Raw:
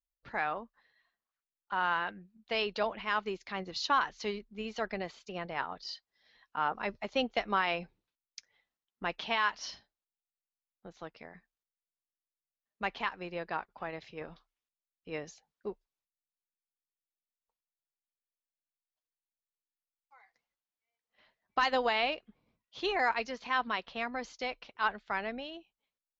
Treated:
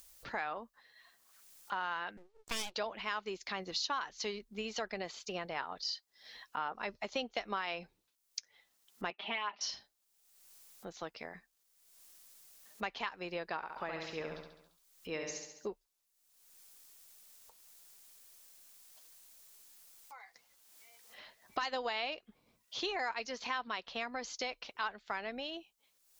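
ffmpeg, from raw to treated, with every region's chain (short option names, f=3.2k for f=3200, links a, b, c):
-filter_complex "[0:a]asettb=1/sr,asplit=3[a][b][c];[a]atrim=end=2.174[d];[b]atrim=start=2.17:end=2.75,asetpts=PTS-STARTPTS,afade=t=in:d=0.004:c=qsin,afade=t=out:st=0.576:d=0.004:c=qsin,highpass=160,lowpass=5.2k,aeval=exprs='abs(val(0))':c=same[e];[c]atrim=start=2.746[f];[d][e]acrossfade=d=0.004:c1=hsin:c2=qsin[g];[g][f]acrossfade=d=0.004:c1=qsin:c2=hsin,asettb=1/sr,asplit=3[h][i][j];[h]atrim=end=9.104[k];[i]atrim=start=9.1:end=9.61,asetpts=PTS-STARTPTS,afade=t=in:d=0.004:c=qsin,afade=t=out:st=0.506:d=0.004:c=qsin,highpass=270,equalizer=f=500:t=q:w=4:g=-9,equalizer=f=1.1k:t=q:w=4:g=-3,equalizer=f=1.6k:t=q:w=4:g=-9,lowpass=f=2.7k:w=0.5412,lowpass=f=2.7k:w=1.3066,aecho=1:1:5:0.83,atrim=end_sample=22491[l];[j]atrim=start=9.606[m];[k][l]acrossfade=d=0.004:c1=hsin:c2=qsin[n];[n][m]acrossfade=d=0.004:c1=qsin:c2=hsin,asettb=1/sr,asplit=3[o][p][q];[o]atrim=end=13.564[r];[p]atrim=start=13.56:end=15.67,asetpts=PTS-STARTPTS,afade=t=in:d=0.004:c=qsin,afade=t=out:st=2.106:d=0.004:c=qsin,bandreject=f=740:w=12,aecho=1:1:69|138|207|276|345|414:0.596|0.292|0.143|0.0701|0.0343|0.0168,atrim=end_sample=93051[s];[q]atrim=start=15.666[t];[r][s]acrossfade=d=0.004:c1=hsin:c2=qsin[u];[u][t]acrossfade=d=0.004:c1=qsin:c2=hsin,acompressor=mode=upward:threshold=-50dB:ratio=2.5,bass=f=250:g=-5,treble=f=4k:g=9,acompressor=threshold=-41dB:ratio=3,volume=4dB"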